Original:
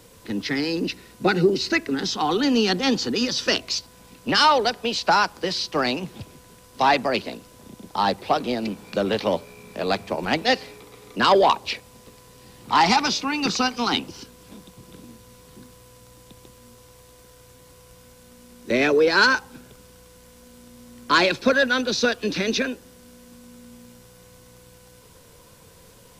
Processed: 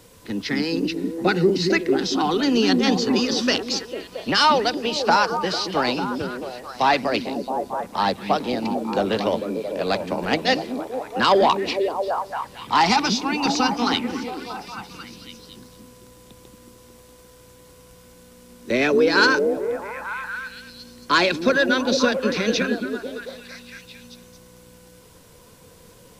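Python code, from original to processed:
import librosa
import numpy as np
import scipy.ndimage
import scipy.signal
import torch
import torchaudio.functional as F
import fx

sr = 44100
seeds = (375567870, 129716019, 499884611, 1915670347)

y = fx.echo_stepped(x, sr, ms=224, hz=240.0, octaves=0.7, feedback_pct=70, wet_db=-0.5)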